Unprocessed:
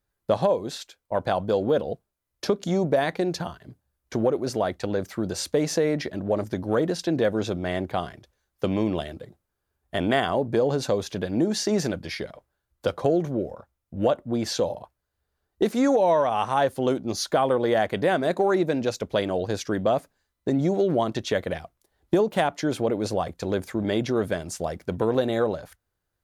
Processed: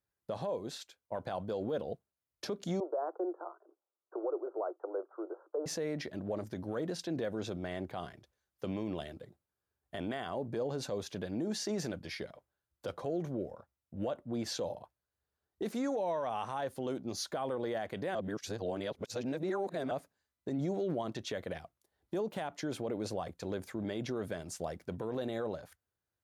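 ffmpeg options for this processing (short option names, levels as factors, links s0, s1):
-filter_complex "[0:a]asettb=1/sr,asplit=3[s0][s1][s2];[s0]atrim=end=2.804[s3];[s1]atrim=start=2.8:end=5.66,asetpts=PTS-STARTPTS,afade=t=in:d=0.004:c=qsin,afade=t=out:st=2.856:d=0.004:c=qsin,asuperpass=centerf=680:order=20:qfactor=0.62[s4];[s2]atrim=start=5.656[s5];[s3][s4]acrossfade=d=0.004:c1=hsin:c2=qsin[s6];[s6][s5]acrossfade=d=0.004:c1=qsin:c2=hsin,asplit=3[s7][s8][s9];[s7]atrim=end=18.152[s10];[s8]atrim=start=18.148:end=19.912,asetpts=PTS-STARTPTS,areverse[s11];[s9]atrim=start=19.908[s12];[s10][s11]acrossfade=d=0.004:c1=hsin:c2=hsin[s13];[s13][s12]acrossfade=d=0.004:c1=hsin:c2=hsin,alimiter=limit=0.126:level=0:latency=1:release=41,highpass=69,volume=0.355"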